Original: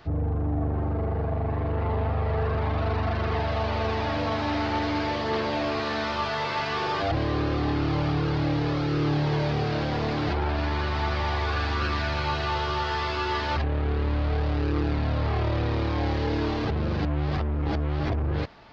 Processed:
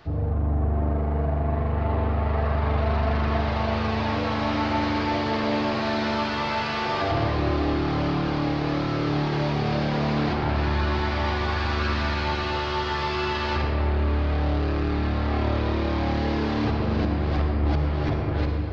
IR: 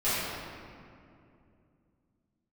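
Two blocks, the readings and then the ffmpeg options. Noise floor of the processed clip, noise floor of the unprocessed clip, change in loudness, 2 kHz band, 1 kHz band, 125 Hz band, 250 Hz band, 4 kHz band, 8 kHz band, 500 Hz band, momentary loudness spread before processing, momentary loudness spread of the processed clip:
−27 dBFS, −29 dBFS, +2.0 dB, +2.0 dB, +1.5 dB, +1.5 dB, +3.0 dB, +1.5 dB, can't be measured, +1.5 dB, 2 LU, 2 LU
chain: -filter_complex "[0:a]asplit=2[link_01][link_02];[1:a]atrim=start_sample=2205,adelay=49[link_03];[link_02][link_03]afir=irnorm=-1:irlink=0,volume=-14dB[link_04];[link_01][link_04]amix=inputs=2:normalize=0"

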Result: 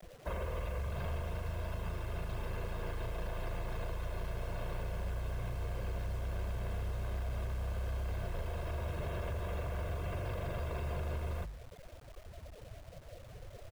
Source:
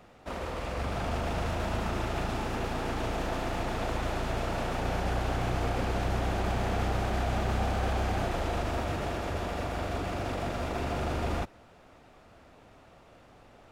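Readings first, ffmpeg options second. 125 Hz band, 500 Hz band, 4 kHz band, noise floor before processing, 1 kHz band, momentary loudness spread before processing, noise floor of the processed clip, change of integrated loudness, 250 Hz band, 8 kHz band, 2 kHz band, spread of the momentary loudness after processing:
−4.5 dB, −9.5 dB, −12.5 dB, −56 dBFS, −13.5 dB, 4 LU, −53 dBFS, −7.5 dB, −13.5 dB, −11.0 dB, −10.5 dB, 13 LU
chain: -filter_complex "[0:a]bandreject=frequency=50:width_type=h:width=6,bandreject=frequency=100:width_type=h:width=6,bandreject=frequency=150:width_type=h:width=6,bandreject=frequency=200:width_type=h:width=6,bandreject=frequency=250:width_type=h:width=6,afftfilt=real='re*gte(hypot(re,im),0.00631)':imag='im*gte(hypot(re,im),0.00631)':win_size=1024:overlap=0.75,aecho=1:1:1.9:0.78,acrossover=split=230|2600[link_01][link_02][link_03];[link_01]acontrast=73[link_04];[link_04][link_02][link_03]amix=inputs=3:normalize=0,alimiter=limit=-18.5dB:level=0:latency=1:release=264,acompressor=threshold=-36dB:ratio=6,asoftclip=type=tanh:threshold=-33dB,acrusher=bits=9:mix=0:aa=0.000001,volume=3dB"

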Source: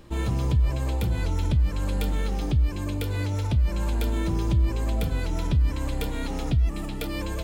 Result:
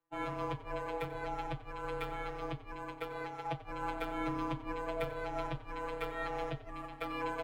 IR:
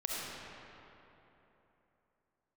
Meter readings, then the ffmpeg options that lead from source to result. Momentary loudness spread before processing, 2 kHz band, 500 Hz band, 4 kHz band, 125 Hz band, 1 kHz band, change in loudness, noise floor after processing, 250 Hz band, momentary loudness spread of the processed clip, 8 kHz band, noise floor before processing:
6 LU, −3.5 dB, −4.0 dB, −12.0 dB, −21.5 dB, +0.5 dB, −13.0 dB, −51 dBFS, −12.0 dB, 5 LU, −19.5 dB, −31 dBFS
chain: -filter_complex "[0:a]afftfilt=real='hypot(re,im)*cos(PI*b)':imag='0':win_size=1024:overlap=0.75,acrossover=split=530 2200:gain=0.1 1 0.0794[link_01][link_02][link_03];[link_01][link_02][link_03]amix=inputs=3:normalize=0,afreqshift=-30,agate=range=-33dB:threshold=-40dB:ratio=3:detection=peak,asplit=2[link_04][link_05];[link_05]asplit=3[link_06][link_07][link_08];[link_06]adelay=91,afreqshift=-33,volume=-16dB[link_09];[link_07]adelay=182,afreqshift=-66,volume=-24.2dB[link_10];[link_08]adelay=273,afreqshift=-99,volume=-32.4dB[link_11];[link_09][link_10][link_11]amix=inputs=3:normalize=0[link_12];[link_04][link_12]amix=inputs=2:normalize=0,volume=8dB"

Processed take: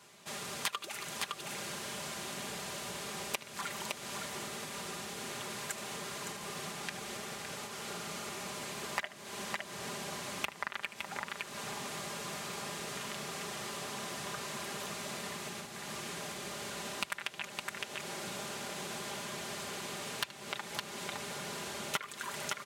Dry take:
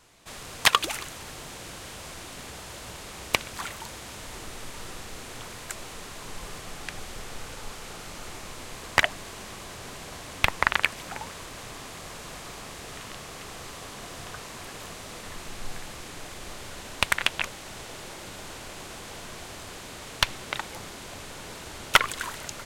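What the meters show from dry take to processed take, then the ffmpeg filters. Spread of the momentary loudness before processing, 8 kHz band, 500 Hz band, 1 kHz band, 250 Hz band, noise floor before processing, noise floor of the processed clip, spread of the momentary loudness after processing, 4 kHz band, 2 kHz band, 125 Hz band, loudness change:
16 LU, −3.5 dB, −3.5 dB, −7.5 dB, −2.0 dB, −42 dBFS, −50 dBFS, 3 LU, −8.0 dB, −10.0 dB, −6.5 dB, −7.5 dB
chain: -af "aecho=1:1:75|562:0.133|0.335,acompressor=threshold=-35dB:ratio=5,highpass=frequency=97:width=0.5412,highpass=frequency=97:width=1.3066,aecho=1:1:5:0.61,volume=-1dB"

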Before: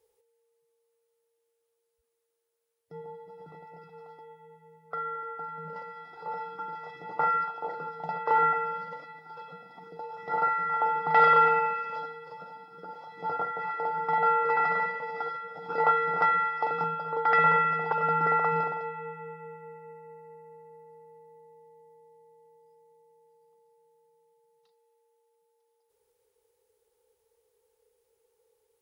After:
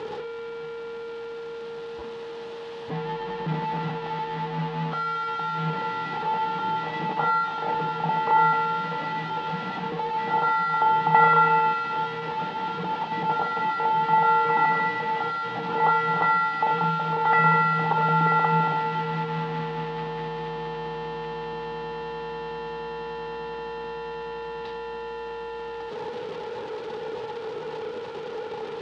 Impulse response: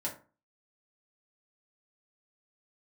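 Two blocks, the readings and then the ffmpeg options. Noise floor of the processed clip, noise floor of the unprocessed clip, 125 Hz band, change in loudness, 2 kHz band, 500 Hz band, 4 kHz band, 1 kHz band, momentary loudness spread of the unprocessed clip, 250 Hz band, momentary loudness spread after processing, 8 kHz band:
−36 dBFS, −78 dBFS, +14.0 dB, +1.0 dB, +3.5 dB, +4.5 dB, +13.0 dB, +5.5 dB, 22 LU, +14.0 dB, 15 LU, can't be measured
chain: -filter_complex "[0:a]aeval=exprs='val(0)+0.5*0.0501*sgn(val(0))':channel_layout=same,highpass=130,equalizer=frequency=160:width_type=q:width=4:gain=5,equalizer=frequency=230:width_type=q:width=4:gain=4,equalizer=frequency=550:width_type=q:width=4:gain=-8,equalizer=frequency=830:width_type=q:width=4:gain=3,equalizer=frequency=1400:width_type=q:width=4:gain=-6,equalizer=frequency=2200:width_type=q:width=4:gain=-6,lowpass=frequency=3600:width=0.5412,lowpass=frequency=3600:width=1.3066,asplit=2[link_01][link_02];[1:a]atrim=start_sample=2205,lowpass=2100[link_03];[link_02][link_03]afir=irnorm=-1:irlink=0,volume=-5.5dB[link_04];[link_01][link_04]amix=inputs=2:normalize=0"

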